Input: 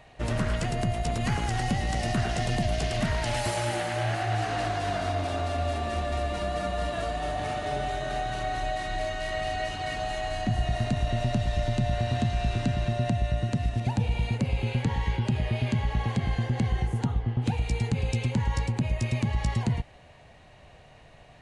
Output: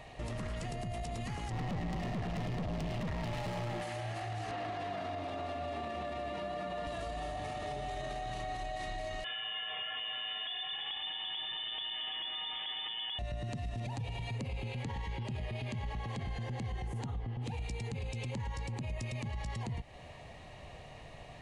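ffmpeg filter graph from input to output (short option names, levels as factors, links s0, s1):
-filter_complex "[0:a]asettb=1/sr,asplit=3[s0][s1][s2];[s0]atrim=end=1.504[s3];[s1]atrim=start=1.5:end=3.82,asetpts=PTS-STARTPTS,afade=t=in:d=0.004:c=qsin,afade=t=out:st=2.316:d=0.004:c=qsin,equalizer=f=170:w=2.5:g=14.5,adynamicsmooth=sensitivity=4:basefreq=2100,aeval=exprs='(tanh(28.2*val(0)+0.3)-tanh(0.3))/28.2':c=same[s4];[s2]atrim=start=3.816[s5];[s3][s4]acrossfade=d=0.004:c1=hsin:c2=qsin[s6];[s6][s5]acrossfade=d=0.004:c1=qsin:c2=hsin,asettb=1/sr,asplit=3[s7][s8][s9];[s7]atrim=end=4.514[s10];[s8]atrim=start=4.51:end=6.87,asetpts=PTS-STARTPTS,afade=t=in:d=0.004:c=qsin,afade=t=out:st=2.356:d=0.004:c=qsin,highpass=140,acrossover=split=3900[s11][s12];[s12]acompressor=threshold=0.00112:ratio=4:attack=1:release=60[s13];[s11][s13]amix=inputs=2:normalize=0[s14];[s9]atrim=start=6.866[s15];[s10][s14]acrossfade=d=0.004:c1=hsin:c2=qsin[s16];[s16][s15]acrossfade=d=0.004:c1=qsin:c2=hsin,asettb=1/sr,asplit=3[s17][s18][s19];[s17]atrim=end=9.244[s20];[s18]atrim=start=9.24:end=13.19,asetpts=PTS-STARTPTS,afade=t=in:d=0.004:c=qsin,afade=t=out:st=3.946:d=0.004:c=qsin,equalizer=f=91:w=0.37:g=-13,lowpass=f=3100:t=q:w=0.5098,lowpass=f=3100:t=q:w=0.6013,lowpass=f=3100:t=q:w=0.9,lowpass=f=3100:t=q:w=2.563,afreqshift=-3600[s21];[s19]atrim=start=13.186[s22];[s20][s21]acrossfade=d=0.004:c1=hsin:c2=qsin[s23];[s23][s22]acrossfade=d=0.004:c1=qsin:c2=hsin,asettb=1/sr,asplit=3[s24][s25][s26];[s24]atrim=end=13.944[s27];[s25]atrim=start=13.94:end=14.41,asetpts=PTS-STARTPTS,afade=t=in:d=0.004:c=qsin,afade=t=out:st=0.466:d=0.004:c=qsin,equalizer=f=210:t=o:w=0.25:g=-12,aecho=1:1:7.4:0.69,atrim=end_sample=20727[s28];[s26]atrim=start=14.406[s29];[s27][s28]acrossfade=d=0.004:c1=hsin:c2=qsin[s30];[s30][s29]acrossfade=d=0.004:c1=qsin:c2=hsin,acompressor=threshold=0.02:ratio=3,bandreject=f=1500:w=7.4,alimiter=level_in=3.16:limit=0.0631:level=0:latency=1:release=30,volume=0.316,volume=1.33"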